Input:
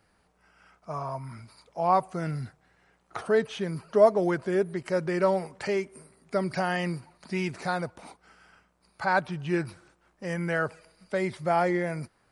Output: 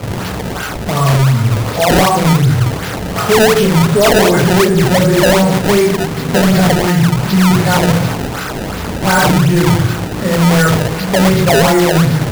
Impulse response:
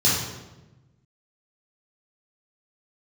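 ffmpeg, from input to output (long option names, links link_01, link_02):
-filter_complex "[0:a]aeval=exprs='val(0)+0.5*0.0251*sgn(val(0))':channel_layout=same[link_01];[1:a]atrim=start_sample=2205,afade=type=out:start_time=0.32:duration=0.01,atrim=end_sample=14553[link_02];[link_01][link_02]afir=irnorm=-1:irlink=0,acrusher=samples=23:mix=1:aa=0.000001:lfo=1:lforange=36.8:lforate=2.7,apsyclip=5dB,volume=-5.5dB"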